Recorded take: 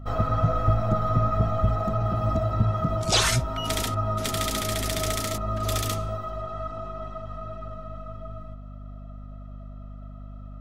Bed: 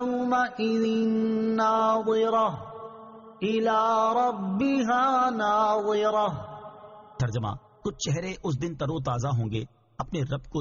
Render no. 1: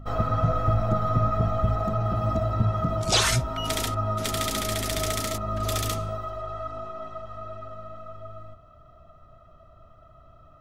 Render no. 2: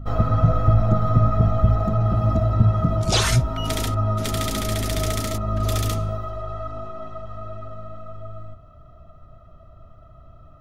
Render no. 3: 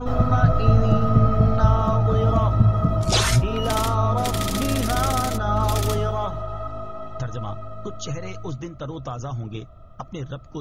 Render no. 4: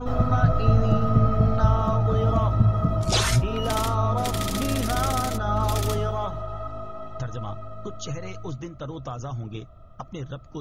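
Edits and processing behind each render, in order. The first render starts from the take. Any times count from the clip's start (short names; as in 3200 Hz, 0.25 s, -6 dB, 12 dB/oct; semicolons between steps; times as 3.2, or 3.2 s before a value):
de-hum 50 Hz, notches 5
low shelf 340 Hz +8 dB; notch 7900 Hz, Q 29
add bed -3 dB
gain -2.5 dB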